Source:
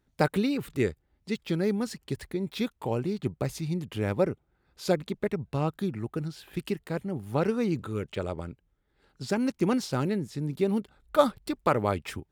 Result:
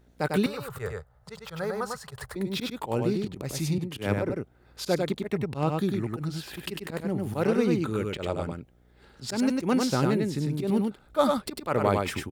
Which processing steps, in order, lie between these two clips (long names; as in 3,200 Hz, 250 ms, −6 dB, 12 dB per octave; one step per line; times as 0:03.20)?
volume swells 108 ms
in parallel at +2 dB: downward compressor, threshold −42 dBFS, peak gain reduction 20.5 dB
on the sum: low-shelf EQ 62 Hz −10 dB
on a send: single-tap delay 99 ms −3.5 dB
on the sum: hum with harmonics 60 Hz, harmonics 13, −62 dBFS −6 dB per octave
0:00.46–0:02.36: drawn EQ curve 130 Hz 0 dB, 310 Hz −25 dB, 450 Hz −3 dB, 1,300 Hz +8 dB, 2,300 Hz −10 dB, 9,900 Hz −3 dB
0:03.78–0:04.30: multiband upward and downward expander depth 100%
level +1.5 dB